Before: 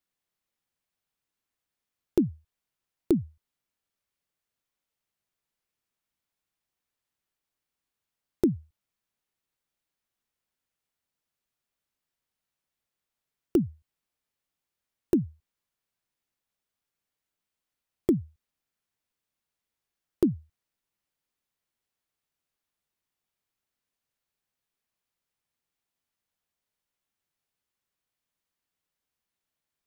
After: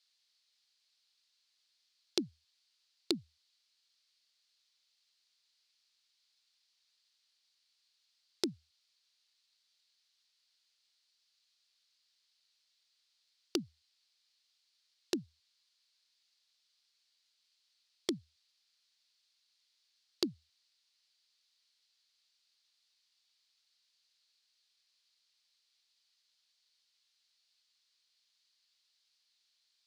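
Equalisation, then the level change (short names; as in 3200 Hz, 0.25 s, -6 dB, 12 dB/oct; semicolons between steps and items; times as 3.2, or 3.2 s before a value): synth low-pass 4400 Hz, resonance Q 3.8; differentiator; +14.0 dB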